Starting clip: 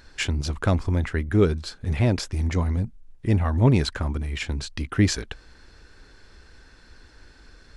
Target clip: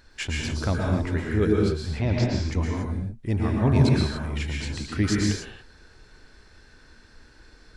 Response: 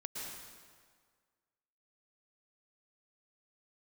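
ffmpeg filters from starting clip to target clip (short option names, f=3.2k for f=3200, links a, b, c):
-filter_complex "[0:a]asettb=1/sr,asplit=3[a][b][c];[a]atrim=end=1.724[d];[b]atrim=start=1.72:end=2.47,asetpts=PTS-STARTPTS,afade=t=in:d=0.004:c=qsin,afade=t=out:st=0.746:d=0.004:c=qsin,lowpass=f=6.2k:w=0.5412,lowpass=f=6.2k:w=1.3066[e];[c]atrim=start=2.466[f];[d][e]acrossfade=d=0.004:c1=hsin:c2=qsin[g];[g][f]acrossfade=d=0.004:c1=qsin:c2=hsin[h];[1:a]atrim=start_sample=2205,afade=t=out:st=0.35:d=0.01,atrim=end_sample=15876[i];[h][i]afir=irnorm=-1:irlink=0"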